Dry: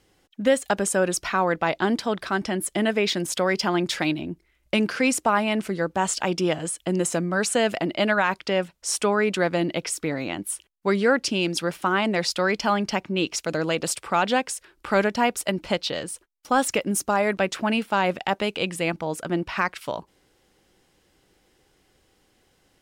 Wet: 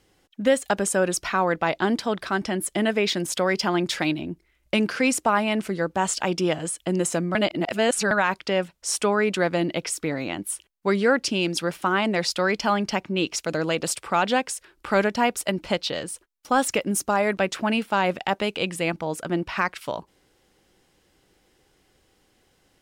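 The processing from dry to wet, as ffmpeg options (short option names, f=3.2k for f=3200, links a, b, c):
-filter_complex "[0:a]asplit=3[a][b][c];[a]atrim=end=7.352[d];[b]atrim=start=7.348:end=8.112,asetpts=PTS-STARTPTS,areverse[e];[c]atrim=start=8.108[f];[d][e]acrossfade=d=0.004:c1=hsin:c2=hsin[g];[g][f]acrossfade=d=0.004:c1=hsin:c2=hsin"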